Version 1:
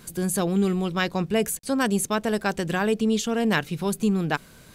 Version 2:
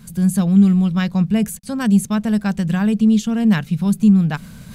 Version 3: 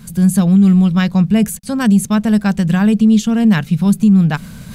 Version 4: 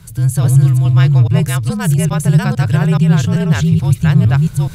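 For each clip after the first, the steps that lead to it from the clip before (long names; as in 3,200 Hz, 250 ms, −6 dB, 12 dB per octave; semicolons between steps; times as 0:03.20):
low shelf with overshoot 260 Hz +7.5 dB, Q 3; reversed playback; upward compression, threshold −27 dBFS; reversed playback; level −1.5 dB
boost into a limiter +8.5 dB; level −3.5 dB
delay that plays each chunk backwards 425 ms, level −1 dB; frequency shifter −56 Hz; level −2 dB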